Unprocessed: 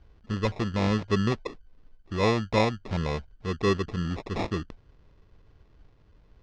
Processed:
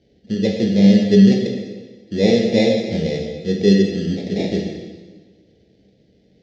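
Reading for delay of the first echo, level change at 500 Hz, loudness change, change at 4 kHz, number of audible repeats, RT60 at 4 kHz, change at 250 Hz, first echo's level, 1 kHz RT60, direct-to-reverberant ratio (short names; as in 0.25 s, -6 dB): none, +11.0 dB, +11.5 dB, +9.5 dB, none, 1.3 s, +15.0 dB, none, 1.4 s, -0.5 dB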